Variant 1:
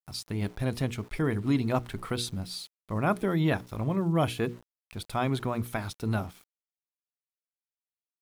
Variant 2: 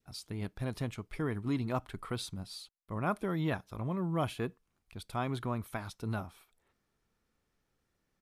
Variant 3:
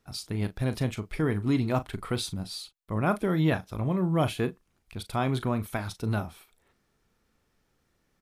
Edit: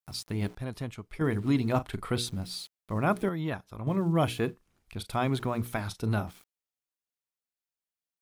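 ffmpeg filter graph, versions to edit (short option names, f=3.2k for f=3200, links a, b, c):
-filter_complex "[1:a]asplit=2[a][b];[2:a]asplit=3[c][d][e];[0:a]asplit=6[f][g][h][i][j][k];[f]atrim=end=0.552[l];[a]atrim=start=0.548:end=1.212[m];[g]atrim=start=1.208:end=1.762[n];[c]atrim=start=1.758:end=2.182[o];[h]atrim=start=2.178:end=3.292[p];[b]atrim=start=3.288:end=3.872[q];[i]atrim=start=3.868:end=4.56[r];[d]atrim=start=4.4:end=5.22[s];[j]atrim=start=5.06:end=5.812[t];[e]atrim=start=5.808:end=6.272[u];[k]atrim=start=6.268[v];[l][m]acrossfade=d=0.004:c1=hsin:c2=hsin[w];[w][n]acrossfade=d=0.004:c1=hsin:c2=hsin[x];[x][o]acrossfade=d=0.004:c1=hsin:c2=hsin[y];[y][p]acrossfade=d=0.004:c1=hsin:c2=hsin[z];[z][q]acrossfade=d=0.004:c1=hsin:c2=hsin[aa];[aa][r]acrossfade=d=0.004:c1=hsin:c2=hsin[ab];[ab][s]acrossfade=d=0.16:c1=tri:c2=tri[ac];[ac][t]acrossfade=d=0.16:c1=tri:c2=tri[ad];[ad][u]acrossfade=d=0.004:c1=hsin:c2=hsin[ae];[ae][v]acrossfade=d=0.004:c1=hsin:c2=hsin"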